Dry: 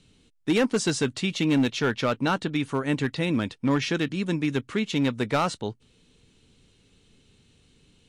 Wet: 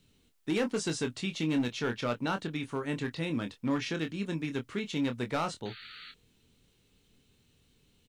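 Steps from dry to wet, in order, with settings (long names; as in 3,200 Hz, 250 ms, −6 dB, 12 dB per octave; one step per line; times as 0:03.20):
sound drawn into the spectrogram noise, 0:05.65–0:06.12, 1,200–4,600 Hz −41 dBFS
double-tracking delay 25 ms −7.5 dB
bit-depth reduction 12 bits, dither triangular
level −8 dB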